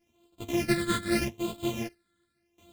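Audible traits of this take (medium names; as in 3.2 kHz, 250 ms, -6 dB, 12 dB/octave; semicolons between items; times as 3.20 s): a buzz of ramps at a fixed pitch in blocks of 128 samples; phasing stages 8, 0.81 Hz, lowest notch 770–1800 Hz; random-step tremolo 3.1 Hz, depth 90%; a shimmering, thickened sound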